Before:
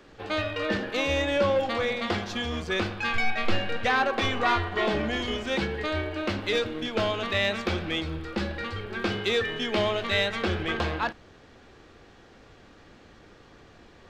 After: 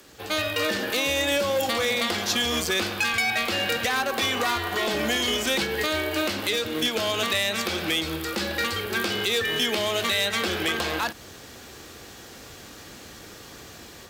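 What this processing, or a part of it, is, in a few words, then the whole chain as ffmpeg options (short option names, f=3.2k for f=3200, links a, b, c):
FM broadcast chain: -filter_complex "[0:a]highpass=50,dynaudnorm=f=390:g=3:m=7.5dB,acrossover=split=220|5200[a][b][c];[a]acompressor=threshold=-37dB:ratio=4[d];[b]acompressor=threshold=-21dB:ratio=4[e];[c]acompressor=threshold=-47dB:ratio=4[f];[d][e][f]amix=inputs=3:normalize=0,aemphasis=mode=production:type=50fm,alimiter=limit=-15.5dB:level=0:latency=1:release=203,asoftclip=type=hard:threshold=-19dB,lowpass=f=15k:w=0.5412,lowpass=f=15k:w=1.3066,aemphasis=mode=production:type=50fm"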